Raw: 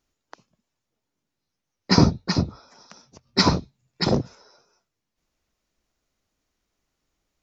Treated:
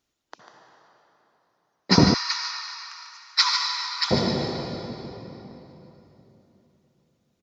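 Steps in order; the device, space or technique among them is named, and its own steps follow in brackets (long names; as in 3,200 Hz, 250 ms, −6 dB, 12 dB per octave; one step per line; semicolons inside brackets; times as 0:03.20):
reverb reduction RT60 1.7 s
PA in a hall (high-pass filter 100 Hz 6 dB per octave; parametric band 3,600 Hz +4 dB 0.57 octaves; single-tap delay 146 ms −8.5 dB; convolution reverb RT60 3.5 s, pre-delay 58 ms, DRR 0.5 dB)
0:02.14–0:04.11: Butterworth high-pass 1,000 Hz 48 dB per octave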